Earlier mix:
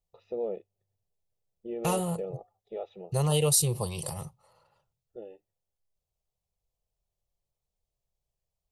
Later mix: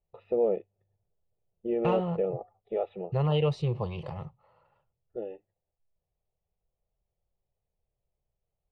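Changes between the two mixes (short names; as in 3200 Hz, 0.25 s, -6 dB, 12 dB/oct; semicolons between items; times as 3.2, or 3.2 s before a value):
first voice +7.0 dB; master: add LPF 2800 Hz 24 dB/oct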